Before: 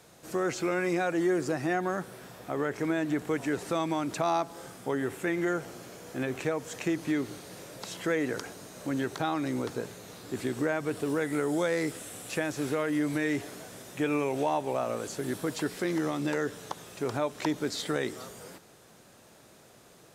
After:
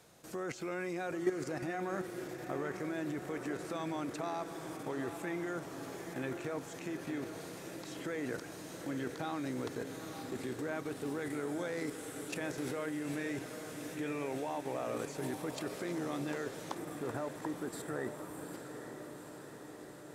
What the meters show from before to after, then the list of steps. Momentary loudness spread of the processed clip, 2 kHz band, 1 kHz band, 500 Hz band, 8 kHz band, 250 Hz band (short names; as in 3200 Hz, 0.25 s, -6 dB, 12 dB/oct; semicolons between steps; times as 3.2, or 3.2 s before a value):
7 LU, -8.0 dB, -8.5 dB, -8.0 dB, -7.0 dB, -8.0 dB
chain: level quantiser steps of 12 dB; spectral gain 16.77–18.53, 2000–7200 Hz -16 dB; diffused feedback echo 0.85 s, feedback 67%, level -8 dB; gain -2 dB